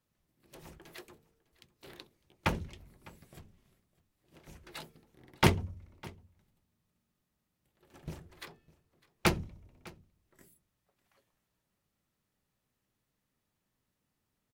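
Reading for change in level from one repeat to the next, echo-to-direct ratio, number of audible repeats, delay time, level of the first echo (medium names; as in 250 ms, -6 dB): no regular repeats, -22.5 dB, 1, 604 ms, -22.5 dB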